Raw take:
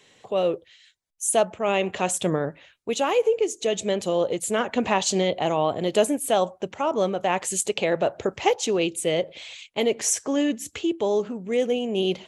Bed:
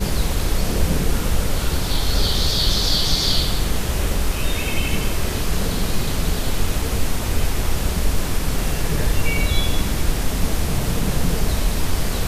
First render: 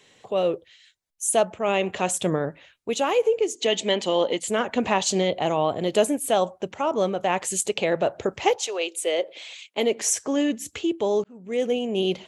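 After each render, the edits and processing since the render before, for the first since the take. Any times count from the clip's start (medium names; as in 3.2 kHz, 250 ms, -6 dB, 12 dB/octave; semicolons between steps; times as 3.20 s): 3.55–4.48 s: cabinet simulation 200–8200 Hz, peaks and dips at 260 Hz +8 dB, 930 Hz +8 dB, 2 kHz +8 dB, 3.1 kHz +9 dB, 4.5 kHz +5 dB; 8.58–10.04 s: high-pass 570 Hz -> 160 Hz 24 dB/octave; 11.24–11.67 s: fade in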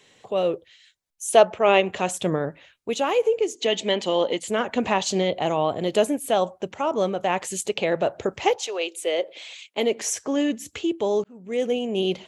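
1.28–1.81 s: time-frequency box 350–6300 Hz +6 dB; dynamic bell 8.8 kHz, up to -6 dB, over -41 dBFS, Q 1.2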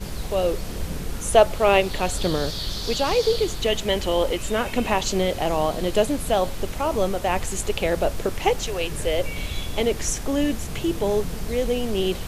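add bed -10.5 dB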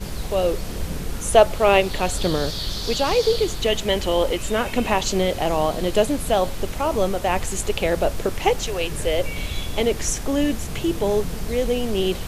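trim +1.5 dB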